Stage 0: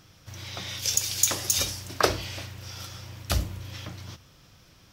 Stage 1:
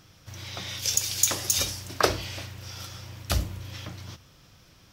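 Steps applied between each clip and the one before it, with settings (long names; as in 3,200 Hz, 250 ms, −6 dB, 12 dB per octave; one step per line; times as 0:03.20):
no processing that can be heard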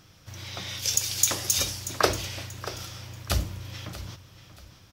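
repeating echo 634 ms, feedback 30%, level −14 dB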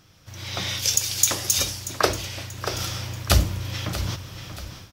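automatic gain control gain up to 14 dB
level −1 dB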